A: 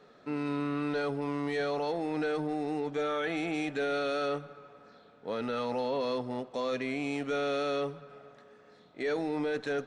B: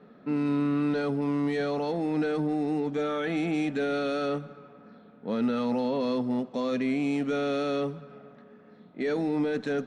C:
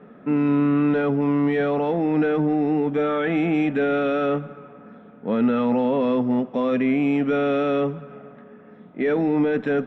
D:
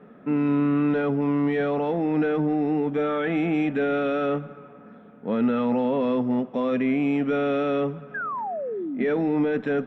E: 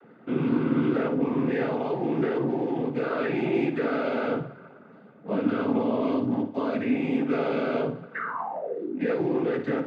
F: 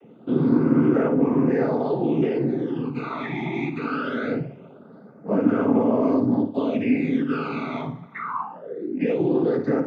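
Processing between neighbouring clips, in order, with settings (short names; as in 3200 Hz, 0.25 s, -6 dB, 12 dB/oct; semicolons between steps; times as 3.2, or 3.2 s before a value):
low-pass opened by the level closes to 2500 Hz, open at -30.5 dBFS; bell 210 Hz +14 dB 0.94 oct
polynomial smoothing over 25 samples; gain +7 dB
painted sound fall, 8.14–9.05, 210–1700 Hz -27 dBFS; gain -2.5 dB
noise vocoder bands 16; flutter echo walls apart 9.7 m, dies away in 0.34 s; gain -2.5 dB
phaser stages 12, 0.22 Hz, lowest notch 480–3900 Hz; gain +4.5 dB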